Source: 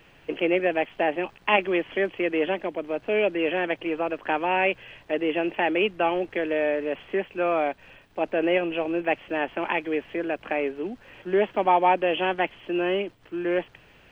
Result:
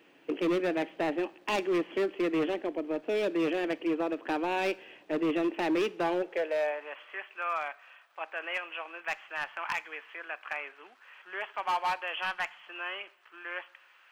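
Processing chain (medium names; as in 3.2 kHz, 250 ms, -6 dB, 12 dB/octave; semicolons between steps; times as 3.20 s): high-pass sweep 290 Hz -> 1.2 kHz, 5.88–7.02 s; overload inside the chain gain 17.5 dB; two-slope reverb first 0.5 s, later 2.3 s, from -18 dB, DRR 16.5 dB; trim -7 dB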